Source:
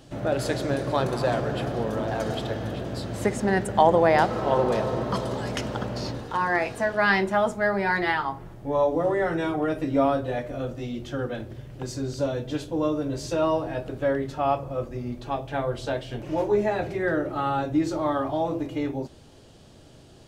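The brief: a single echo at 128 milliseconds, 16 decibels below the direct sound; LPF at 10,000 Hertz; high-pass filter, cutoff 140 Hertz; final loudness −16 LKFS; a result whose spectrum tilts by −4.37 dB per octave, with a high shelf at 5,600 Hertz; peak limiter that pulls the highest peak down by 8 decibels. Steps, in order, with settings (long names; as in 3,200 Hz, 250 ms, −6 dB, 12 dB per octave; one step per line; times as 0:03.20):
high-pass filter 140 Hz
low-pass filter 10,000 Hz
high-shelf EQ 5,600 Hz +3.5 dB
brickwall limiter −13.5 dBFS
single-tap delay 128 ms −16 dB
level +11 dB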